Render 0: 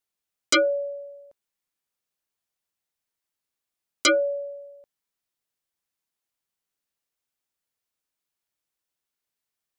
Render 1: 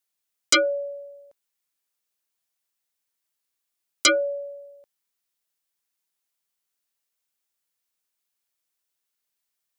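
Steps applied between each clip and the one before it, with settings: tilt +1.5 dB/oct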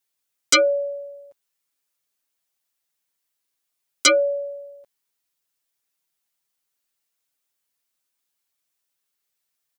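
comb 7.3 ms, depth 89%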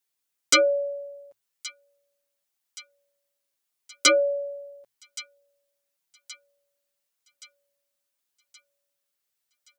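notches 60/120 Hz; thin delay 1.123 s, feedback 52%, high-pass 2400 Hz, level -17 dB; gain -2.5 dB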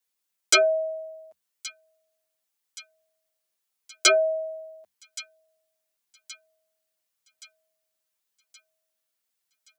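frequency shift +71 Hz

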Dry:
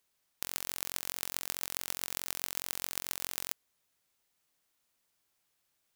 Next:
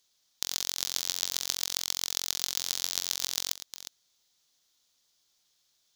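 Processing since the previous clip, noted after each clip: reverse delay 0.259 s, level -11.5 dB; band shelf 4700 Hz +12 dB 1.3 oct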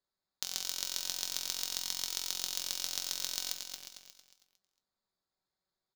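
Wiener smoothing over 15 samples; resonator 190 Hz, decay 0.17 s, harmonics all, mix 70%; on a send: feedback echo 0.227 s, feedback 36%, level -7 dB; on the sum: gain +1 dB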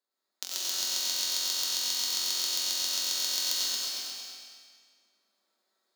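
steep high-pass 210 Hz 96 dB/oct; vocal rider 0.5 s; reverb RT60 1.8 s, pre-delay 60 ms, DRR -6 dB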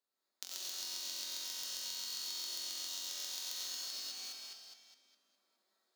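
reverse delay 0.206 s, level -7 dB; compressor 3:1, threshold -38 dBFS, peak gain reduction 10.5 dB; gain -3.5 dB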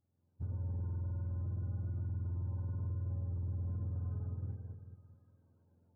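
spectrum mirrored in octaves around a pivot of 570 Hz; limiter -42 dBFS, peak gain reduction 9 dB; gain +9.5 dB

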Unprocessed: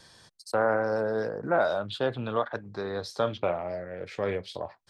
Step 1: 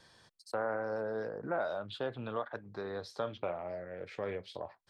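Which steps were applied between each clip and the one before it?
tone controls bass -2 dB, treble -6 dB; compressor 1.5:1, threshold -33 dBFS, peak gain reduction 5 dB; gain -5 dB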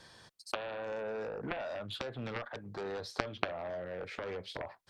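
compressor 6:1, threshold -37 dBFS, peak gain reduction 8 dB; added harmonics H 3 -7 dB, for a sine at -24.5 dBFS; gain +14.5 dB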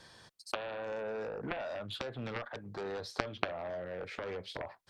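nothing audible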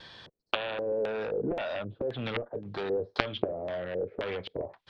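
vibrato 0.54 Hz 9.2 cents; LFO low-pass square 1.9 Hz 450–3400 Hz; gain +5 dB

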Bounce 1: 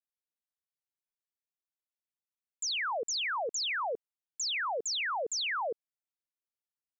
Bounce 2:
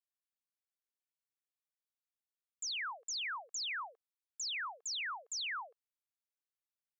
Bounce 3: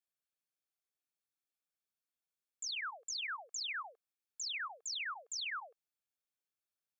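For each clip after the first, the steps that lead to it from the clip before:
HPF 1000 Hz 24 dB/oct; gain -6 dB
notch comb 970 Hz

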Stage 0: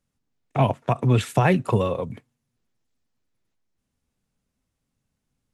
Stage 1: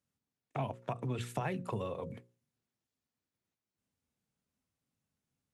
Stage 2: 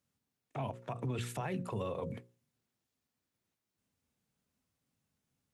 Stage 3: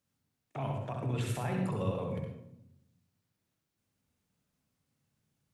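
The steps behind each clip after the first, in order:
HPF 79 Hz; notches 60/120/180/240/300/360/420/480/540 Hz; compressor 2.5:1, threshold -29 dBFS, peak gain reduction 10 dB; gain -7.5 dB
limiter -32 dBFS, peak gain reduction 10 dB; gain +3.5 dB
reverb RT60 0.80 s, pre-delay 64 ms, DRR 1.5 dB

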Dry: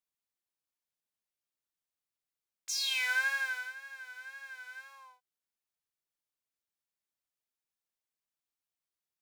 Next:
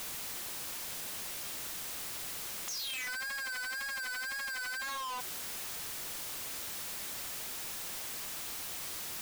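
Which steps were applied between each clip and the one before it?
infinite clipping; gain +4 dB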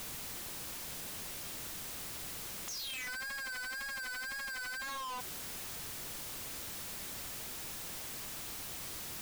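low shelf 330 Hz +8.5 dB; gain -3 dB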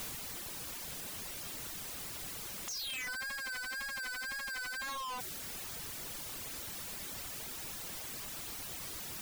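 reverb removal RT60 0.7 s; gain +2 dB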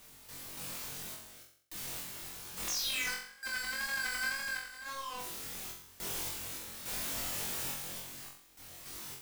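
random-step tremolo, depth 100%; flutter echo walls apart 3.8 m, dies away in 0.56 s; gain +2.5 dB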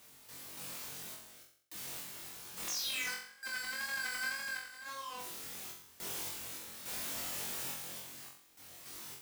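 HPF 130 Hz 6 dB/oct; gain -2.5 dB

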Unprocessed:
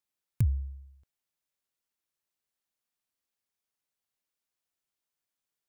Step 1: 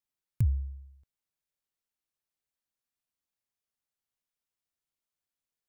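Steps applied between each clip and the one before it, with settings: low shelf 140 Hz +6.5 dB; gain -4.5 dB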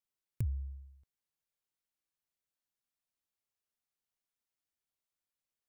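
compressor 2:1, threshold -32 dBFS, peak gain reduction 6 dB; gain -3 dB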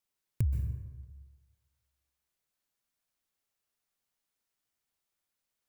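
plate-style reverb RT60 1.3 s, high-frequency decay 0.55×, pre-delay 0.115 s, DRR 5 dB; gain +5 dB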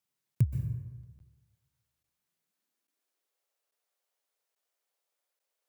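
high-pass sweep 130 Hz -> 510 Hz, 2.17–3.4; crackling interface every 0.84 s, samples 512, zero, from 0.35

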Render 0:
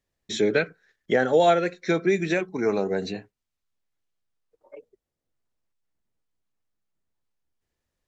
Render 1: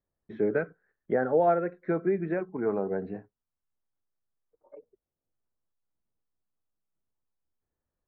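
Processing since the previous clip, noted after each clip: LPF 1500 Hz 24 dB/oct; gain -4.5 dB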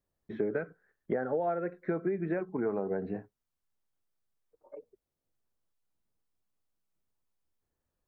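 compressor 6:1, threshold -30 dBFS, peak gain reduction 11 dB; gain +2 dB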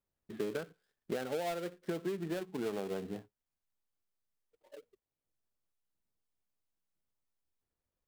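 switching dead time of 0.2 ms; gain -5 dB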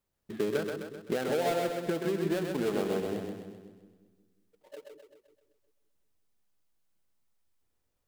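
split-band echo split 340 Hz, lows 0.181 s, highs 0.129 s, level -4 dB; gain +5.5 dB

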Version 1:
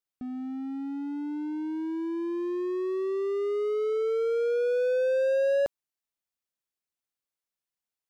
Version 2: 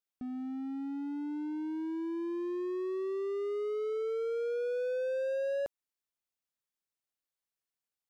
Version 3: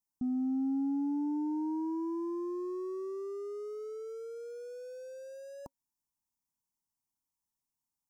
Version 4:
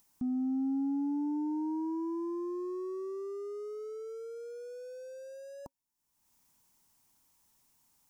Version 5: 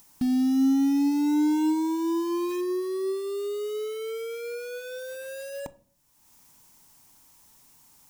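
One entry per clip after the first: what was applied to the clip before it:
compressor 2.5:1, threshold -30 dBFS, peak gain reduction 5.5 dB; gain -3 dB
EQ curve 270 Hz 0 dB, 550 Hz -21 dB, 940 Hz +2 dB, 1500 Hz -23 dB, 3600 Hz -24 dB, 5500 Hz -4 dB; gain +6.5 dB
upward compressor, threshold -53 dBFS
in parallel at -5 dB: wrapped overs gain 44.5 dB; on the sum: shoebox room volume 560 m³, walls furnished, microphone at 0.38 m; gain +9 dB

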